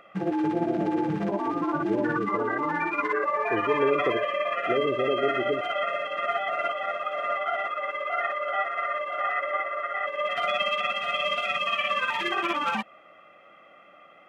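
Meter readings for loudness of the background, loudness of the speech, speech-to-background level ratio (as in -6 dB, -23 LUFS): -27.5 LUFS, -31.0 LUFS, -3.5 dB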